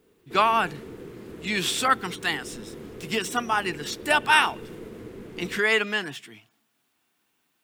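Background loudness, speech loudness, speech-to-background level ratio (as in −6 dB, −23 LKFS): −41.5 LKFS, −24.0 LKFS, 17.5 dB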